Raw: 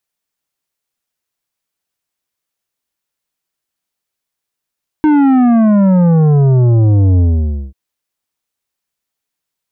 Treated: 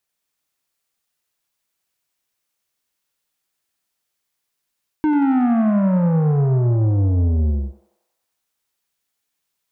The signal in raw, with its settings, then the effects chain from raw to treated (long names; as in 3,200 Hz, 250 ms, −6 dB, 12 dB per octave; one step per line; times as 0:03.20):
bass drop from 310 Hz, over 2.69 s, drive 10 dB, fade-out 0.54 s, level −7.5 dB
reversed playback
downward compressor 6 to 1, threshold −17 dBFS
reversed playback
feedback echo with a high-pass in the loop 92 ms, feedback 83%, high-pass 730 Hz, level −5 dB